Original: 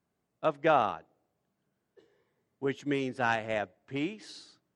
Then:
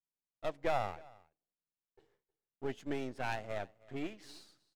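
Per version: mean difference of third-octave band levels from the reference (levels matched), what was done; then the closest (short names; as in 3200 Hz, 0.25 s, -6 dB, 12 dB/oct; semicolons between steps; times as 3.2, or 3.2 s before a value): 4.5 dB: half-wave gain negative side -12 dB; gate with hold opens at -59 dBFS; dynamic EQ 1300 Hz, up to -6 dB, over -47 dBFS, Q 2.8; echo 0.314 s -23.5 dB; gain -3.5 dB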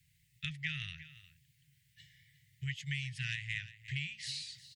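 16.0 dB: Chebyshev band-stop 150–1900 Hz, order 5; bell 6000 Hz -2.5 dB 0.59 oct; compressor 3:1, threshold -57 dBFS, peak gain reduction 17 dB; on a send: echo 0.356 s -16 dB; on the sum: gain +16.5 dB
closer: first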